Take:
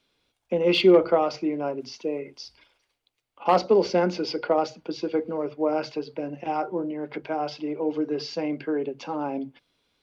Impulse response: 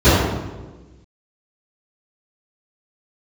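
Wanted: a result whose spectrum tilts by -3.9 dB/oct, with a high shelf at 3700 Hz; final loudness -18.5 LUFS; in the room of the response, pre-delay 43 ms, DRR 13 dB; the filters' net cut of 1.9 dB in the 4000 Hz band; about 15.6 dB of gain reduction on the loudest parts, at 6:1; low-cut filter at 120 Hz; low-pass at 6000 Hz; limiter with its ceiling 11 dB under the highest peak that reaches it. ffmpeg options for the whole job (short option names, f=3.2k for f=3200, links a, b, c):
-filter_complex "[0:a]highpass=120,lowpass=6k,highshelf=f=3.7k:g=8,equalizer=f=4k:t=o:g=-7,acompressor=threshold=-29dB:ratio=6,alimiter=level_in=4dB:limit=-24dB:level=0:latency=1,volume=-4dB,asplit=2[a][b];[1:a]atrim=start_sample=2205,adelay=43[c];[b][c]afir=irnorm=-1:irlink=0,volume=-41.5dB[d];[a][d]amix=inputs=2:normalize=0,volume=18.5dB"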